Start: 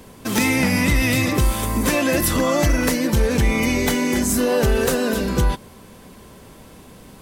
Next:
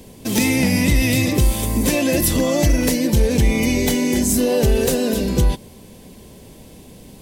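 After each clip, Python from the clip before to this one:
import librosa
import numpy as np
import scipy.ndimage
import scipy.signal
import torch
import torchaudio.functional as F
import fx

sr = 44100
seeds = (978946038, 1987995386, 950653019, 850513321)

y = fx.peak_eq(x, sr, hz=1300.0, db=-13.5, octaves=0.99)
y = y * 10.0 ** (2.5 / 20.0)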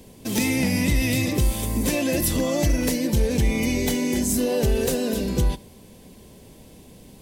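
y = x + 10.0 ** (-22.5 / 20.0) * np.pad(x, (int(72 * sr / 1000.0), 0))[:len(x)]
y = y * 10.0 ** (-5.0 / 20.0)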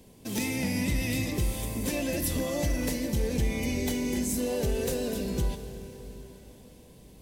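y = fx.rev_plate(x, sr, seeds[0], rt60_s=4.7, hf_ratio=0.9, predelay_ms=0, drr_db=8.5)
y = y * 10.0 ** (-7.5 / 20.0)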